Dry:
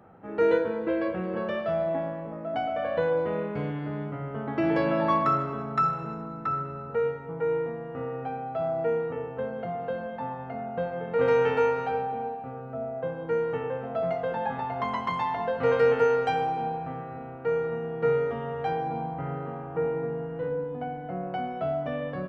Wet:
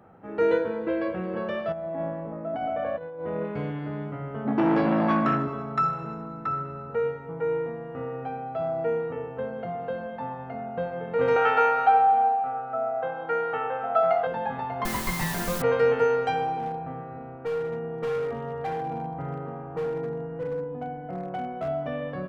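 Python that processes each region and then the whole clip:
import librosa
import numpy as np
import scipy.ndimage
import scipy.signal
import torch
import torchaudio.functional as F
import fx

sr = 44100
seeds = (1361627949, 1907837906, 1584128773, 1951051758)

y = fx.chain(x, sr, fx.lowpass(hz=1500.0, slope=6),
    fx.over_compress(threshold_db=-30.0, ratio=-0.5), at=(1.72, 3.45))
y = fx.chain(y, sr, fx.peak_eq(hz=230.0, db=14.5, octaves=0.85),
    fx.transformer_sat(knee_hz=750.0), at=(4.45, 5.48))
y = fx.chain(y, sr, fx.lowpass(hz=3600.0, slope=12),
    fx.tilt_eq(slope=3.5),
    fx.small_body(hz=(760.0, 1300.0), ring_ms=30, db=16), at=(11.36, 14.27))
y = fx.chain(y, sr, fx.lower_of_two(delay_ms=5.2),
    fx.low_shelf(hz=320.0, db=9.0),
    fx.quant_dither(seeds[0], bits=6, dither='triangular'), at=(14.85, 15.62))
y = fx.chain(y, sr, fx.lowpass(hz=1900.0, slope=6),
    fx.overload_stage(gain_db=25.5), at=(16.59, 21.68))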